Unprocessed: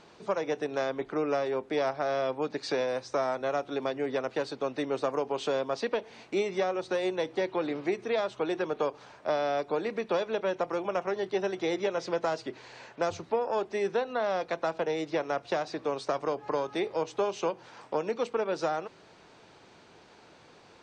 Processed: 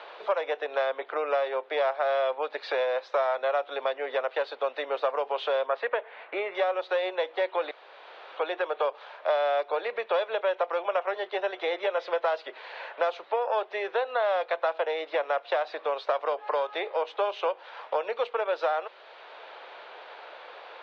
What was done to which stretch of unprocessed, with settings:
5.66–6.55 s: FFT filter 850 Hz 0 dB, 1.7 kHz +4 dB, 5.2 kHz -15 dB
7.71–8.37 s: room tone
whole clip: Chebyshev band-pass 530–3600 Hz, order 3; three bands compressed up and down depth 40%; trim +4.5 dB

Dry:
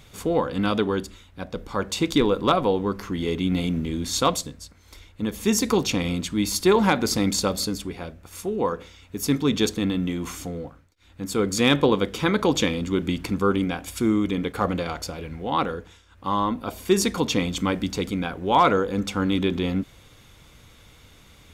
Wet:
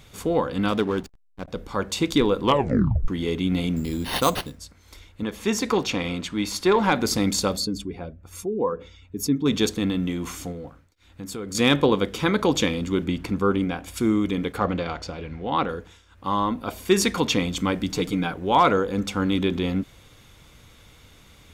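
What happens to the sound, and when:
0.68–1.48 s: hysteresis with a dead band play -30 dBFS
2.43 s: tape stop 0.65 s
3.76–4.58 s: careless resampling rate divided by 6×, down none, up hold
5.23–6.92 s: overdrive pedal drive 8 dB, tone 2.4 kHz, clips at -8.5 dBFS
7.57–9.46 s: spectral contrast enhancement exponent 1.5
10.52–11.55 s: compression 3:1, threshold -32 dBFS
13.04–13.94 s: treble shelf 3.6 kHz -6.5 dB
14.58–15.69 s: low-pass 4.8 kHz
16.67–17.36 s: dynamic bell 2 kHz, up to +5 dB, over -39 dBFS, Q 0.72
17.89–18.34 s: comb 6.6 ms

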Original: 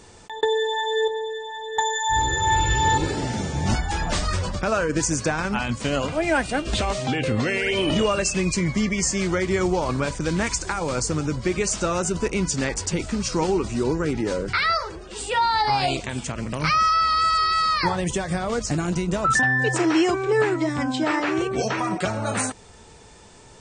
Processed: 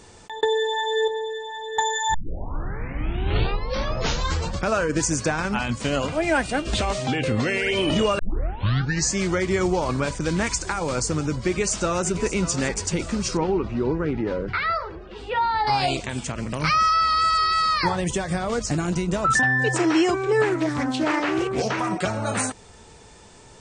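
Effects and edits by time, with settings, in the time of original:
2.14 s: tape start 2.53 s
8.19 s: tape start 0.93 s
11.47–12.13 s: echo throw 590 ms, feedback 50%, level -12 dB
13.37–15.67 s: distance through air 320 m
20.47–21.89 s: loudspeaker Doppler distortion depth 0.22 ms

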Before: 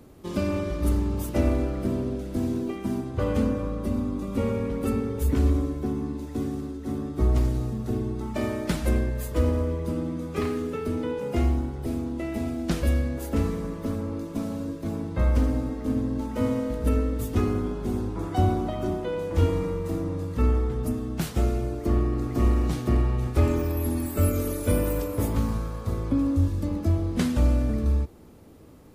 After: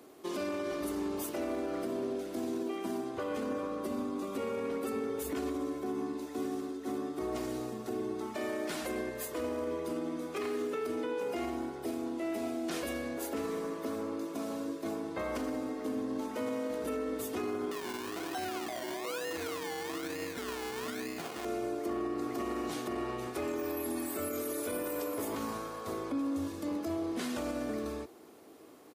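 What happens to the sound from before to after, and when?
17.71–21.45 s: decimation with a swept rate 27×, swing 60% 1.1 Hz
whole clip: high-pass 360 Hz 12 dB/octave; comb 2.8 ms, depth 31%; peak limiter -27 dBFS

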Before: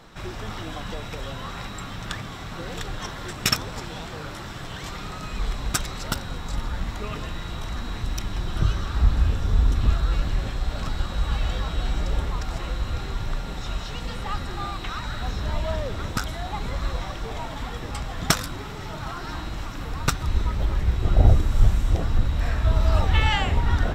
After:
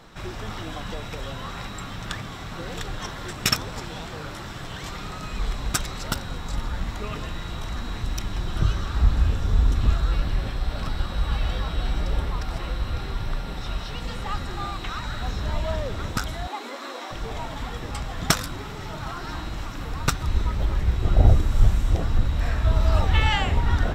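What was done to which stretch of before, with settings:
10.11–14.02 s: peaking EQ 6.9 kHz -9 dB 0.24 oct
16.47–17.11 s: steep high-pass 230 Hz 96 dB/octave

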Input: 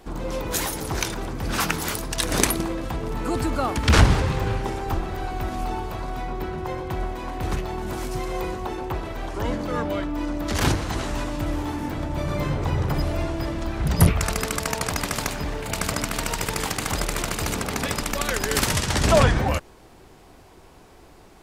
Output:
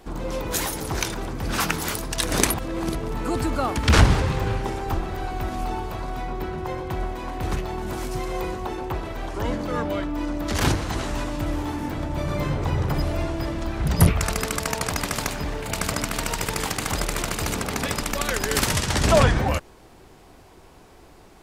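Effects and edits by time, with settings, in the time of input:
2.54–2.95 s: reverse

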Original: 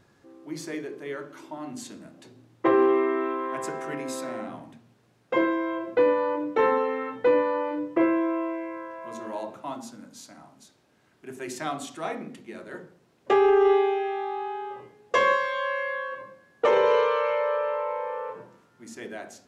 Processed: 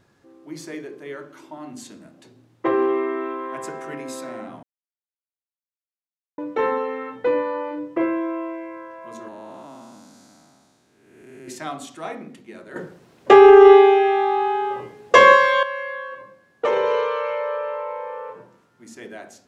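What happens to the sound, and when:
4.63–6.38 s: mute
9.28–11.48 s: spectral blur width 434 ms
12.76–15.63 s: gain +11 dB

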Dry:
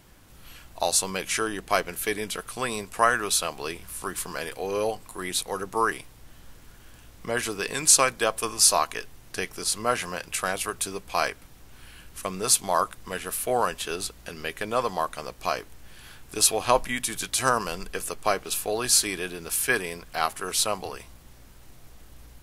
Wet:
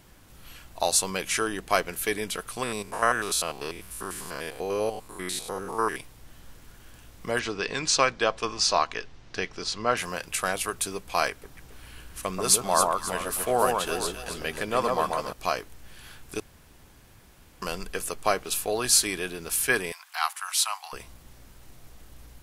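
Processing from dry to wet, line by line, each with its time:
2.63–5.96 s: spectrogram pixelated in time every 100 ms
7.39–9.97 s: low-pass 5.7 kHz 24 dB/octave
11.30–15.33 s: echo whose repeats swap between lows and highs 135 ms, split 1.4 kHz, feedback 62%, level -3 dB
16.40–17.62 s: room tone
19.92–20.93 s: steep high-pass 810 Hz 48 dB/octave

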